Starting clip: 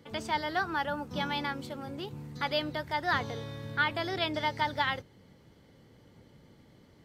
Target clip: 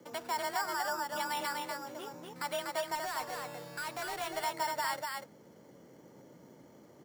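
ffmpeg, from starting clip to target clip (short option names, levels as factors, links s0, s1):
-filter_complex "[0:a]acrossover=split=710|820[s0][s1][s2];[s0]acompressor=threshold=0.00282:ratio=6[s3];[s3][s1][s2]amix=inputs=3:normalize=0,bandpass=f=550:t=q:w=0.54:csg=0,alimiter=level_in=2:limit=0.0631:level=0:latency=1:release=45,volume=0.501,acrusher=samples=7:mix=1:aa=0.000001,afreqshift=25,asettb=1/sr,asplit=3[s4][s5][s6];[s4]atrim=end=2.954[s7];[s5]atrim=start=2.95:end=4.32,asetpts=PTS-STARTPTS,afade=t=in:d=0.004:c=qsin,afade=t=out:st=1.366:d=0.004:c=qsin,asoftclip=type=hard:threshold=0.0106[s8];[s6]atrim=start=4.316[s9];[s7][s8]acrossfade=d=0.004:c1=hsin:c2=qsin[s10];[s10][s9]acrossfade=d=0.004:c1=qsin:c2=hsin,aecho=1:1:244:0.668,volume=1.58"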